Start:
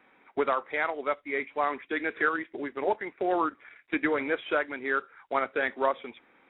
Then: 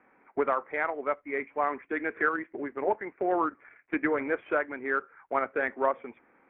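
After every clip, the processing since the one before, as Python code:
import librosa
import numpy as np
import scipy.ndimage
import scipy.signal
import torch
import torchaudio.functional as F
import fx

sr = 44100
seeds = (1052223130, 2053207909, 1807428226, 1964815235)

y = fx.wiener(x, sr, points=9)
y = scipy.signal.sosfilt(scipy.signal.butter(4, 2300.0, 'lowpass', fs=sr, output='sos'), y)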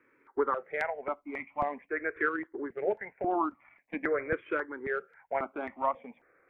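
y = fx.phaser_held(x, sr, hz=3.7, low_hz=200.0, high_hz=1600.0)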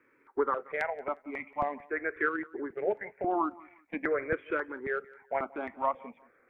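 y = fx.echo_feedback(x, sr, ms=178, feedback_pct=27, wet_db=-22)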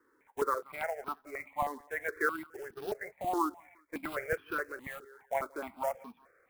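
y = fx.quant_float(x, sr, bits=2)
y = fx.phaser_held(y, sr, hz=4.8, low_hz=640.0, high_hz=2100.0)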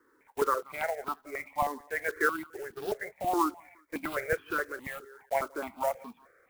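y = fx.block_float(x, sr, bits=5)
y = y * 10.0 ** (3.5 / 20.0)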